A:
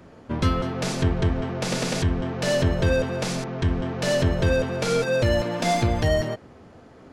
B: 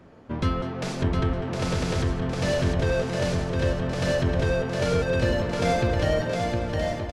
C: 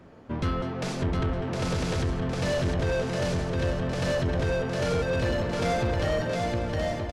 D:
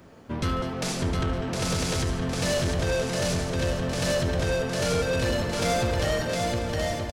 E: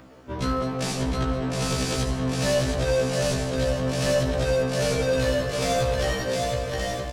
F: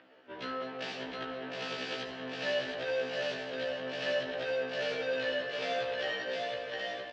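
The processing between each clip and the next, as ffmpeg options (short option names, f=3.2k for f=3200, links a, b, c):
-af "highshelf=f=5.7k:g=-7.5,aecho=1:1:710|1172|1471|1666|1793:0.631|0.398|0.251|0.158|0.1,volume=-3dB"
-af "asoftclip=type=tanh:threshold=-20.5dB"
-af "crystalizer=i=2.5:c=0,aecho=1:1:73|146|219|292|365|438:0.224|0.125|0.0702|0.0393|0.022|0.0123"
-filter_complex "[0:a]acrossover=split=5100[a][b];[a]acompressor=mode=upward:threshold=-48dB:ratio=2.5[c];[c][b]amix=inputs=2:normalize=0,afftfilt=real='re*1.73*eq(mod(b,3),0)':imag='im*1.73*eq(mod(b,3),0)':win_size=2048:overlap=0.75,volume=3dB"
-af "highpass=380,equalizer=f=1.1k:t=q:w=4:g=-6,equalizer=f=1.7k:t=q:w=4:g=7,equalizer=f=2.9k:t=q:w=4:g=7,lowpass=f=4.3k:w=0.5412,lowpass=f=4.3k:w=1.3066,volume=-8.5dB"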